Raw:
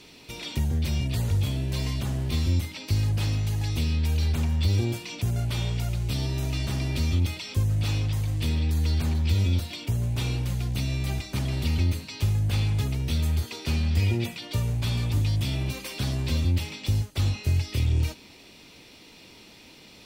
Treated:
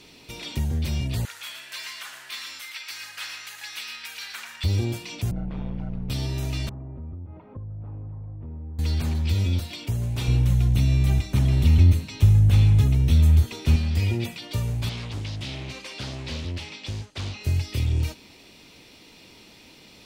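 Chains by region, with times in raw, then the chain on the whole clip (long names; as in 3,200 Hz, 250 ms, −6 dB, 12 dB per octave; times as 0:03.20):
0:01.25–0:04.64: high-pass with resonance 1,500 Hz, resonance Q 2.4 + single-tap delay 115 ms −7.5 dB
0:05.31–0:06.10: low-pass filter 1,200 Hz + ring modulation 69 Hz
0:06.69–0:08.79: low-pass filter 1,100 Hz 24 dB per octave + downward compressor 5 to 1, threshold −35 dBFS
0:10.28–0:13.76: low-shelf EQ 210 Hz +10.5 dB + notch filter 4,700 Hz, Q 8
0:14.89–0:17.41: low-pass filter 6,500 Hz + low-shelf EQ 260 Hz −9.5 dB + highs frequency-modulated by the lows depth 0.45 ms
whole clip: no processing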